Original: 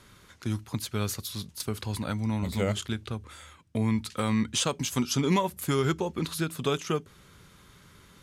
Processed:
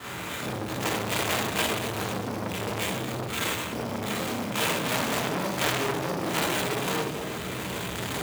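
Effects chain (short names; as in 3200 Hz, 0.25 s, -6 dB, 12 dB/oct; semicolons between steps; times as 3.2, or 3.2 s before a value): local time reversal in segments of 33 ms; recorder AGC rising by 9.1 dB/s; limiter -24.5 dBFS, peak gain reduction 10.5 dB; compressor, threshold -39 dBFS, peak gain reduction 10 dB; bell 10000 Hz +12 dB 1.6 oct; sample-rate reducer 5300 Hz, jitter 20%; split-band echo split 840 Hz, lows 0.773 s, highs 0.114 s, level -14 dB; reverb RT60 1.0 s, pre-delay 19 ms, DRR -9 dB; dynamic EQ 1300 Hz, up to -6 dB, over -44 dBFS, Q 0.81; HPF 120 Hz 12 dB/oct; core saturation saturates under 3200 Hz; gain +9 dB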